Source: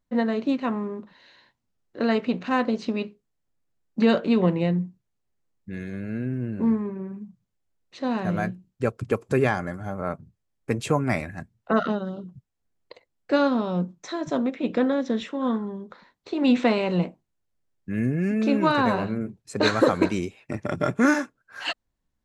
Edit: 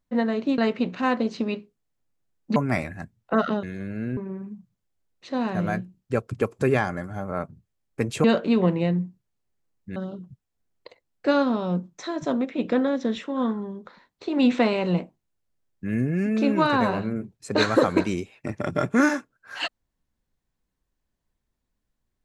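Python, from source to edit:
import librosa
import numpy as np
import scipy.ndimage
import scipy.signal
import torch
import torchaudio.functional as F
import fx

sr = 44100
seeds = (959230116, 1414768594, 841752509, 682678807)

y = fx.edit(x, sr, fx.cut(start_s=0.58, length_s=1.48),
    fx.swap(start_s=4.04, length_s=1.72, other_s=10.94, other_length_s=1.07),
    fx.cut(start_s=6.3, length_s=0.57), tone=tone)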